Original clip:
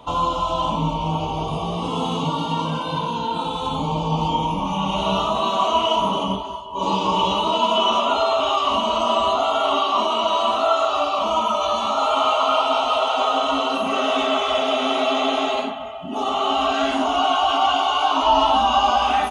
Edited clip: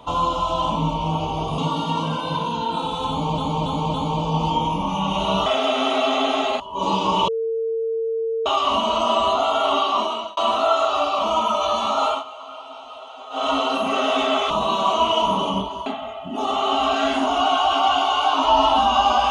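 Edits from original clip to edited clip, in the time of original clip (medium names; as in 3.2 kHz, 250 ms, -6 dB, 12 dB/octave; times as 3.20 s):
1.58–2.20 s: delete
3.72–4.00 s: loop, 4 plays
5.24–6.60 s: swap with 14.50–15.64 s
7.28–8.46 s: bleep 452 Hz -20.5 dBFS
9.78–10.37 s: fade out equal-power
12.07–13.47 s: dip -18.5 dB, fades 0.17 s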